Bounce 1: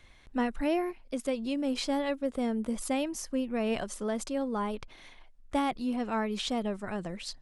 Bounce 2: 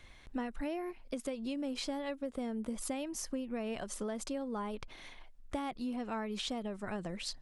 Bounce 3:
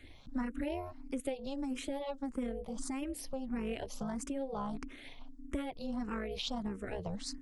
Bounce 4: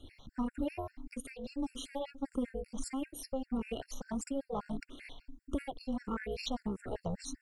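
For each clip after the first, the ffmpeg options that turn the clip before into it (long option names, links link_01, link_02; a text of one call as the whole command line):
ffmpeg -i in.wav -af "acompressor=threshold=-36dB:ratio=6,volume=1dB" out.wav
ffmpeg -i in.wav -filter_complex "[0:a]lowshelf=frequency=220:gain=6,tremolo=f=270:d=0.788,asplit=2[link_01][link_02];[link_02]afreqshift=1.6[link_03];[link_01][link_03]amix=inputs=2:normalize=1,volume=4.5dB" out.wav
ffmpeg -i in.wav -filter_complex "[0:a]asplit=2[link_01][link_02];[link_02]asoftclip=type=hard:threshold=-32.5dB,volume=-10.5dB[link_03];[link_01][link_03]amix=inputs=2:normalize=0,afftfilt=real='re*gt(sin(2*PI*5.1*pts/sr)*(1-2*mod(floor(b*sr/1024/1400),2)),0)':imag='im*gt(sin(2*PI*5.1*pts/sr)*(1-2*mod(floor(b*sr/1024/1400),2)),0)':win_size=1024:overlap=0.75,volume=1dB" out.wav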